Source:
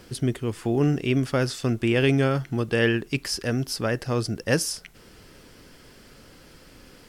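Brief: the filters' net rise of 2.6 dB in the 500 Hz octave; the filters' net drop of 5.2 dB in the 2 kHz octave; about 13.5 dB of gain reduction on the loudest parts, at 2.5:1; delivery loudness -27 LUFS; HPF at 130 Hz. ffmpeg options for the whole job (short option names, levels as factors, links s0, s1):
-af "highpass=130,equalizer=f=500:t=o:g=3.5,equalizer=f=2000:t=o:g=-7,acompressor=threshold=0.0141:ratio=2.5,volume=2.82"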